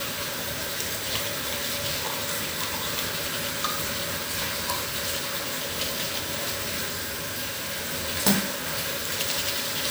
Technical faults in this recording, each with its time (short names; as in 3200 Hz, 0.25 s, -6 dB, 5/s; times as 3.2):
6.89–7.87 clipped -27 dBFS